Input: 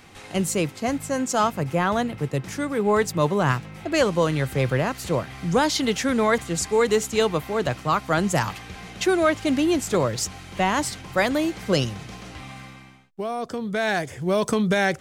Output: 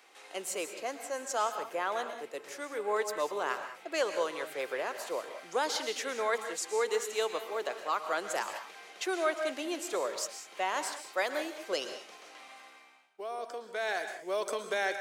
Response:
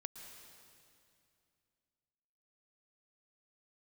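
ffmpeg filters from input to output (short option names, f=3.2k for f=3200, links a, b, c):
-filter_complex "[0:a]highpass=f=400:w=0.5412,highpass=f=400:w=1.3066[a];[1:a]atrim=start_sample=2205,afade=t=out:st=0.26:d=0.01,atrim=end_sample=11907[b];[a][b]afir=irnorm=-1:irlink=0,volume=-4.5dB"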